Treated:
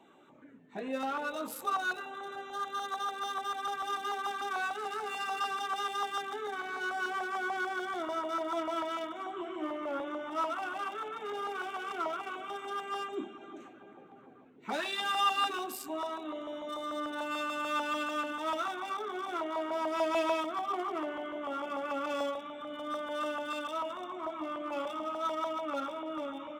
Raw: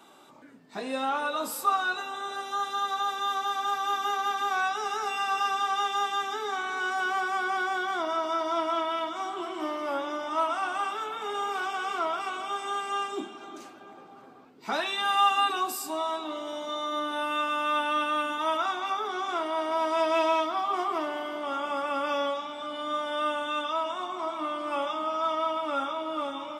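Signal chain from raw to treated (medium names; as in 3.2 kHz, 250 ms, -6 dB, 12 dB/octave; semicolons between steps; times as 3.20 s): local Wiener filter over 9 samples; LFO notch saw down 6.8 Hz 600–1500 Hz; trim -2 dB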